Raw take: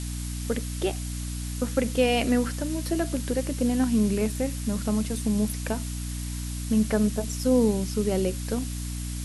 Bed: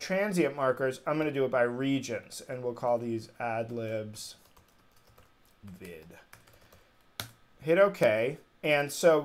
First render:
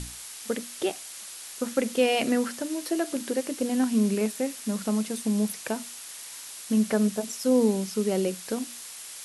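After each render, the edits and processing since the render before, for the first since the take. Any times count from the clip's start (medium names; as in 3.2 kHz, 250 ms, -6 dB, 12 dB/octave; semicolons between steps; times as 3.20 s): hum notches 60/120/180/240/300 Hz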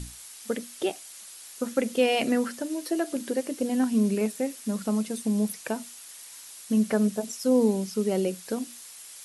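noise reduction 6 dB, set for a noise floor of -42 dBFS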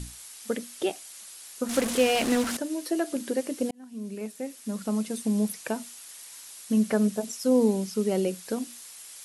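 1.69–2.57 s: one-bit delta coder 64 kbps, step -24 dBFS; 3.71–5.16 s: fade in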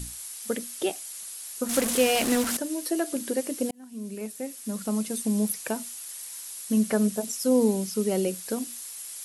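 treble shelf 9 kHz +12 dB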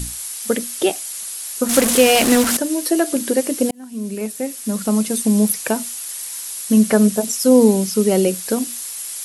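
trim +10 dB; peak limiter -1 dBFS, peak gain reduction 1 dB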